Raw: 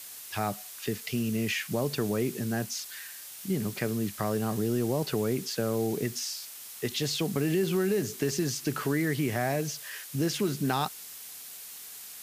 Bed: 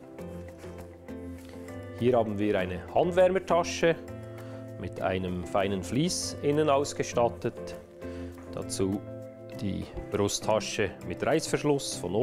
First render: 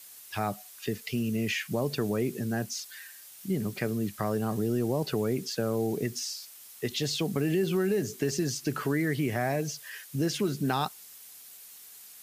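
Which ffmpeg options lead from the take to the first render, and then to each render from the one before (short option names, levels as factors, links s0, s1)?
-af "afftdn=nr=7:nf=-44"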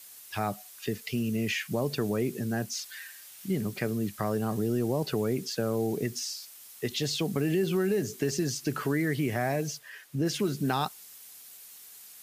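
-filter_complex "[0:a]asettb=1/sr,asplit=3[s0][s1][s2];[s0]atrim=end=2.734[s3];[s1]atrim=start=2.73:end=3.61,asetpts=PTS-STARTPTS,afade=t=in:d=0.004:c=qsin,afade=t=out:st=0.876:d=0.004:c=qsin,equalizer=f=2200:t=o:w=2.1:g=3.5[s4];[s2]atrim=start=3.606[s5];[s3][s4]acrossfade=d=0.004:c1=hsin:c2=qsin[s6];[s6][s5]acrossfade=d=0.004:c1=qsin:c2=hsin,asplit=3[s7][s8][s9];[s7]afade=t=out:st=9.77:d=0.02[s10];[s8]highshelf=f=3200:g=-10.5,afade=t=in:st=9.77:d=0.02,afade=t=out:st=10.25:d=0.02[s11];[s9]afade=t=in:st=10.25:d=0.02[s12];[s10][s11][s12]amix=inputs=3:normalize=0"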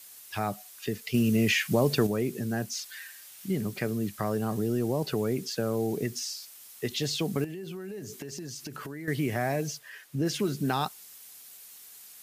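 -filter_complex "[0:a]asettb=1/sr,asplit=3[s0][s1][s2];[s0]atrim=end=1.144[s3];[s1]atrim=start=1.14:end=2.07,asetpts=PTS-STARTPTS,afade=t=in:d=0.004:c=qsin,afade=t=out:st=0.926:d=0.004:c=qsin,acontrast=41[s4];[s2]atrim=start=2.066[s5];[s3][s4]acrossfade=d=0.004:c1=hsin:c2=qsin[s6];[s6][s5]acrossfade=d=0.004:c1=qsin:c2=hsin,asettb=1/sr,asplit=3[s7][s8][s9];[s7]atrim=end=7.444[s10];[s8]atrim=start=7.44:end=9.08,asetpts=PTS-STARTPTS,afade=t=in:d=0.004:c=qsin,afade=t=out:st=1.636:d=0.004:c=qsin,acompressor=threshold=0.0178:ratio=12:attack=3.2:release=140:knee=1:detection=peak[s11];[s9]atrim=start=9.076[s12];[s10][s11]acrossfade=d=0.004:c1=hsin:c2=qsin[s13];[s13][s12]acrossfade=d=0.004:c1=qsin:c2=hsin"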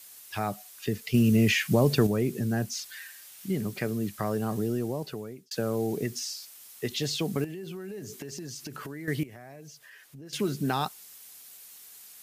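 -filter_complex "[0:a]asettb=1/sr,asplit=3[s0][s1][s2];[s0]atrim=end=0.794[s3];[s1]atrim=start=0.79:end=2.95,asetpts=PTS-STARTPTS,afade=t=in:d=0.004:c=qsin,afade=t=out:st=2.156:d=0.004:c=qsin,lowshelf=f=180:g=6.5[s4];[s2]atrim=start=2.946[s5];[s3][s4]acrossfade=d=0.004:c1=hsin:c2=qsin[s6];[s6][s5]acrossfade=d=0.004:c1=qsin:c2=hsin,asettb=1/sr,asplit=3[s7][s8][s9];[s7]atrim=end=9.234[s10];[s8]atrim=start=9.23:end=10.33,asetpts=PTS-STARTPTS,afade=t=in:d=0.004:c=qsin,afade=t=out:st=1.096:d=0.004:c=qsin,acompressor=threshold=0.00355:ratio=3:attack=3.2:release=140:knee=1:detection=peak[s11];[s9]atrim=start=10.326[s12];[s10][s11]acrossfade=d=0.004:c1=hsin:c2=qsin[s13];[s13][s12]acrossfade=d=0.004:c1=qsin:c2=hsin,asplit=2[s14][s15];[s14]atrim=end=5.51,asetpts=PTS-STARTPTS,afade=t=out:st=4.63:d=0.88[s16];[s15]atrim=start=5.51,asetpts=PTS-STARTPTS,afade=t=in:d=0.004:c=hsin[s17];[s16][s17]concat=n=2:v=0:a=1"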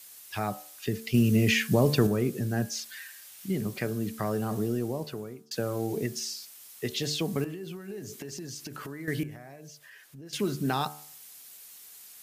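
-af "bandreject=f=74.67:t=h:w=4,bandreject=f=149.34:t=h:w=4,bandreject=f=224.01:t=h:w=4,bandreject=f=298.68:t=h:w=4,bandreject=f=373.35:t=h:w=4,bandreject=f=448.02:t=h:w=4,bandreject=f=522.69:t=h:w=4,bandreject=f=597.36:t=h:w=4,bandreject=f=672.03:t=h:w=4,bandreject=f=746.7:t=h:w=4,bandreject=f=821.37:t=h:w=4,bandreject=f=896.04:t=h:w=4,bandreject=f=970.71:t=h:w=4,bandreject=f=1045.38:t=h:w=4,bandreject=f=1120.05:t=h:w=4,bandreject=f=1194.72:t=h:w=4,bandreject=f=1269.39:t=h:w=4,bandreject=f=1344.06:t=h:w=4,bandreject=f=1418.73:t=h:w=4,bandreject=f=1493.4:t=h:w=4,bandreject=f=1568.07:t=h:w=4,bandreject=f=1642.74:t=h:w=4,bandreject=f=1717.41:t=h:w=4"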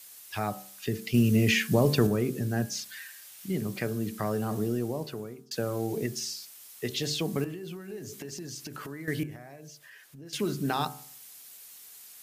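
-af "bandreject=f=65.42:t=h:w=4,bandreject=f=130.84:t=h:w=4,bandreject=f=196.26:t=h:w=4,bandreject=f=261.68:t=h:w=4,bandreject=f=327.1:t=h:w=4,bandreject=f=392.52:t=h:w=4"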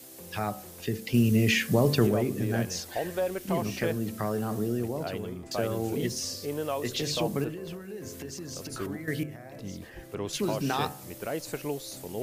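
-filter_complex "[1:a]volume=0.422[s0];[0:a][s0]amix=inputs=2:normalize=0"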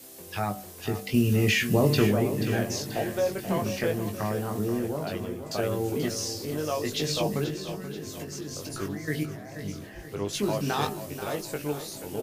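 -filter_complex "[0:a]asplit=2[s0][s1];[s1]adelay=20,volume=0.562[s2];[s0][s2]amix=inputs=2:normalize=0,aecho=1:1:483|966|1449|1932|2415:0.282|0.141|0.0705|0.0352|0.0176"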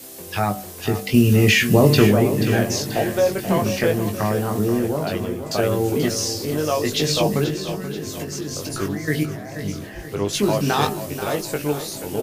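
-af "volume=2.51"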